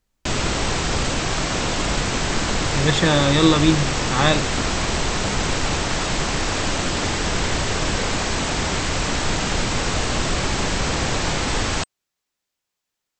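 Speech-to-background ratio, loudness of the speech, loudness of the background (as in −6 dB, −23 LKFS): 3.0 dB, −19.0 LKFS, −22.0 LKFS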